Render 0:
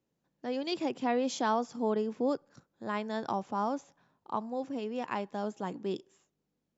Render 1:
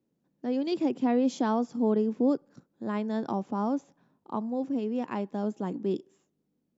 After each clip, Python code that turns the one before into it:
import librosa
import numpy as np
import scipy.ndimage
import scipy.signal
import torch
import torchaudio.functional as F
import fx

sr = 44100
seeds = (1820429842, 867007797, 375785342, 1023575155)

y = fx.peak_eq(x, sr, hz=250.0, db=12.0, octaves=2.1)
y = F.gain(torch.from_numpy(y), -4.0).numpy()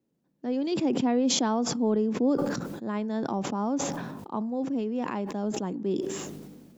y = fx.sustainer(x, sr, db_per_s=34.0)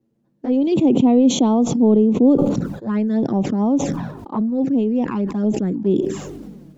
y = fx.tilt_eq(x, sr, slope=-2.0)
y = fx.env_flanger(y, sr, rest_ms=9.0, full_db=-22.0)
y = F.gain(torch.from_numpy(y), 8.0).numpy()